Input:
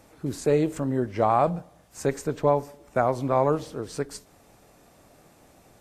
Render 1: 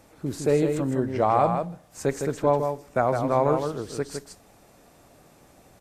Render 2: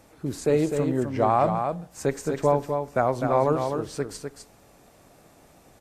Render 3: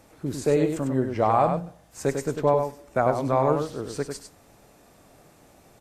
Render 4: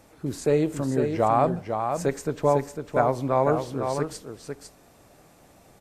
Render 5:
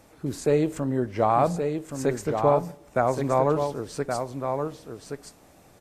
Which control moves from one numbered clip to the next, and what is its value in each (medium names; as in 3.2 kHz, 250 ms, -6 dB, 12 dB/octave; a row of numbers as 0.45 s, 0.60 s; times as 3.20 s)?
delay, time: 159 ms, 253 ms, 99 ms, 502 ms, 1123 ms